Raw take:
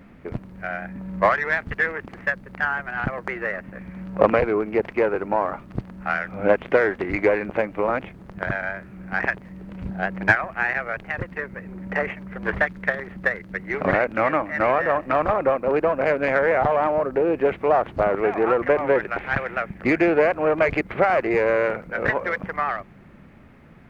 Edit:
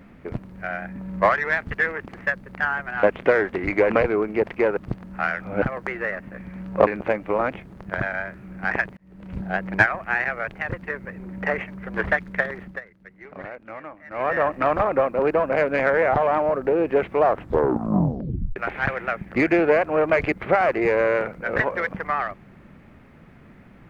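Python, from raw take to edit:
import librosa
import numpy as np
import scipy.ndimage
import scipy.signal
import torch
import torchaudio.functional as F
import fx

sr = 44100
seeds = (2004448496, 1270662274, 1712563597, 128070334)

y = fx.edit(x, sr, fx.swap(start_s=3.03, length_s=1.25, other_s=6.49, other_length_s=0.87),
    fx.cut(start_s=5.15, length_s=0.49),
    fx.fade_in_span(start_s=9.46, length_s=0.4),
    fx.fade_down_up(start_s=13.1, length_s=1.72, db=-16.5, fade_s=0.2),
    fx.tape_stop(start_s=17.72, length_s=1.33), tone=tone)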